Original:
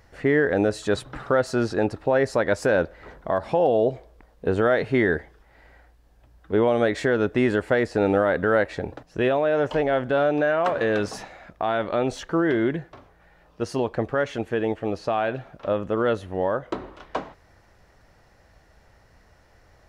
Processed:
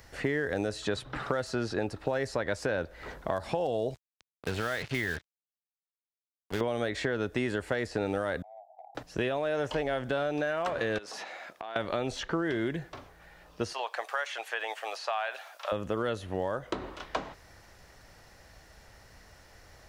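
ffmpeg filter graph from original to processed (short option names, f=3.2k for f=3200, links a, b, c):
-filter_complex "[0:a]asettb=1/sr,asplit=3[a][b][c];[a]atrim=end=3.944[d];[b]atrim=start=3.94:end=6.61,asetpts=PTS-STARTPTS,afade=t=in:d=0.004:c=qsin,afade=t=out:st=2.666:d=0.004:c=qsin,equalizer=f=440:w=0.43:g=-11.5,acrusher=bits=5:mix=0:aa=0.5[e];[c]atrim=start=6.606[f];[d][e]acrossfade=d=0.004:c1=hsin:c2=qsin[g];[g][f]acrossfade=d=0.004:c1=qsin:c2=hsin,asettb=1/sr,asplit=3[h][i][j];[h]atrim=end=8.424[k];[i]atrim=start=8.42:end=8.95,asetpts=PTS-STARTPTS,afade=t=in:d=0.004:c=qsin,afade=t=out:st=0.526:d=0.004:c=qsin,asuperpass=centerf=740:order=8:qfactor=4,acompressor=threshold=-44dB:ratio=16:attack=3.2:release=140:knee=1:detection=peak[l];[j]atrim=start=8.946[m];[k][l]acrossfade=d=0.004:c1=hsin:c2=qsin[n];[n][m]acrossfade=d=0.004:c1=qsin:c2=hsin,asettb=1/sr,asplit=3[o][p][q];[o]atrim=end=10.984[r];[p]atrim=start=10.98:end=11.76,asetpts=PTS-STARTPTS,afade=t=in:d=0.004:c=qsin,afade=t=out:st=0.776:d=0.004:c=qsin,highpass=380,acompressor=threshold=-38dB:ratio=6:attack=3.2:release=140:knee=1:detection=peak[s];[q]atrim=start=11.756[t];[r][s]acrossfade=d=0.004:c1=hsin:c2=qsin[u];[u][t]acrossfade=d=0.004:c1=qsin:c2=hsin,asettb=1/sr,asplit=3[v][w][x];[v]atrim=end=13.734[y];[w]atrim=start=13.73:end=15.72,asetpts=PTS-STARTPTS,afade=t=in:d=0.004:c=qsin,afade=t=out:st=1.986:d=0.004:c=qsin,highpass=f=710:w=0.5412,highpass=f=710:w=1.3066,acrossover=split=3000[z][aa];[aa]acompressor=threshold=-49dB:ratio=4:attack=1:release=60[ab];[z][ab]amix=inputs=2:normalize=0,highshelf=f=5.3k:g=10[ac];[x]atrim=start=15.716[ad];[y][ac]acrossfade=d=0.004:c1=hsin:c2=qsin[ae];[ae][ad]acrossfade=d=0.004:c1=qsin:c2=hsin,highshelf=f=2.5k:g=9.5,acrossover=split=99|4900[af][ag][ah];[af]acompressor=threshold=-45dB:ratio=4[ai];[ag]acompressor=threshold=-29dB:ratio=4[aj];[ah]acompressor=threshold=-54dB:ratio=4[ak];[ai][aj][ak]amix=inputs=3:normalize=0"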